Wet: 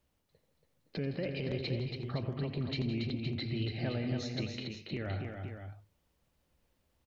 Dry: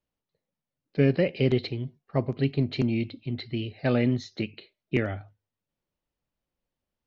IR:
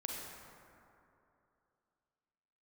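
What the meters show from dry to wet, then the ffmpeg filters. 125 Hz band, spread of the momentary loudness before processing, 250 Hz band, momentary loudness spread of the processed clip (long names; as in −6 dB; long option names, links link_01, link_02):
−7.0 dB, 11 LU, −9.5 dB, 9 LU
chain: -af "equalizer=frequency=72:width=1.8:gain=7.5,acompressor=threshold=-39dB:ratio=3,alimiter=level_in=12.5dB:limit=-24dB:level=0:latency=1:release=38,volume=-12.5dB,aecho=1:1:87|162|185|281|359|516:0.211|0.224|0.133|0.531|0.133|0.355,volume=8.5dB"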